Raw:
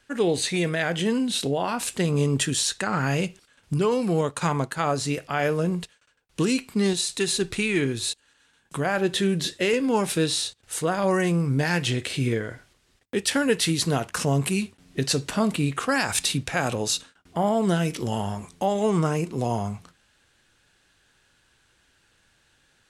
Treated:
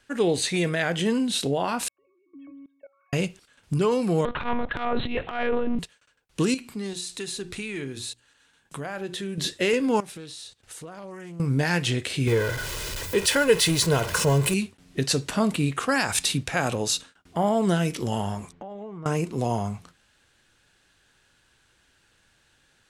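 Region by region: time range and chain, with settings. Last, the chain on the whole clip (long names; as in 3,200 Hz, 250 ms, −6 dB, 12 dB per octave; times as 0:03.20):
0:01.88–0:03.13: three sine waves on the formant tracks + resonances in every octave C#, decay 0.46 s + output level in coarse steps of 22 dB
0:04.25–0:05.79: one-pitch LPC vocoder at 8 kHz 240 Hz + transient designer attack −11 dB, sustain +10 dB
0:06.54–0:09.38: mains-hum notches 60/120/180/240/300/360 Hz + downward compressor 2 to 1, threshold −36 dBFS
0:10.00–0:11.40: downward compressor, threshold −38 dBFS + highs frequency-modulated by the lows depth 0.19 ms
0:12.27–0:14.54: converter with a step at zero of −28 dBFS + comb filter 2 ms, depth 55%
0:18.52–0:19.06: low-pass filter 2,000 Hz + downward compressor 5 to 1, threshold −37 dBFS
whole clip: no processing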